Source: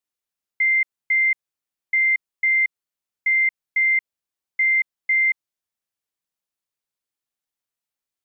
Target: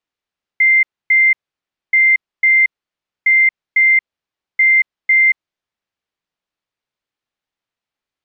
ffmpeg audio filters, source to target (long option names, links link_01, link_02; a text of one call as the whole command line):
ffmpeg -i in.wav -af "lowpass=3800,volume=7.5dB" out.wav